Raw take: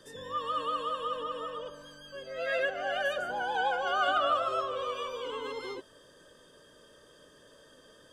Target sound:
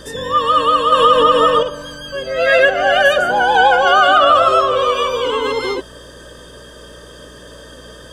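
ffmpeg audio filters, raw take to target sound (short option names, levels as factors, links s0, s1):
-filter_complex "[0:a]asettb=1/sr,asplit=3[s0][s1][s2];[s0]atrim=end=0.924[s3];[s1]atrim=start=0.92:end=1.63,asetpts=PTS-STARTPTS,afade=t=in:d=0.004:c=qsin,afade=t=out:st=0.706:d=0.004:c=qsin,acontrast=84[s4];[s2]atrim=start=1.626[s5];[s3][s4]acrossfade=d=0.004:c1=hsin:c2=qsin[s6];[s6][s5]acrossfade=d=0.004:c1=qsin:c2=hsin,aeval=exprs='val(0)+0.000794*(sin(2*PI*60*n/s)+sin(2*PI*2*60*n/s)/2+sin(2*PI*3*60*n/s)/3+sin(2*PI*4*60*n/s)/4+sin(2*PI*5*60*n/s)/5)':c=same,alimiter=level_in=10:limit=0.891:release=50:level=0:latency=1,volume=0.891"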